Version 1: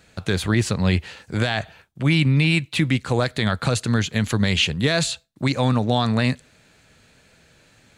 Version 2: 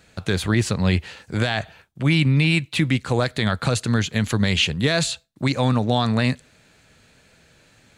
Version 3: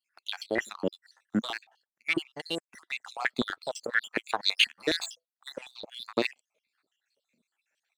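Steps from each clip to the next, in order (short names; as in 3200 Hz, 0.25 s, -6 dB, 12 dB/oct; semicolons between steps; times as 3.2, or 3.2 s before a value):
nothing audible
random spectral dropouts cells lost 66%; power-law curve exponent 1.4; stepped high-pass 12 Hz 230–4000 Hz; gain -2.5 dB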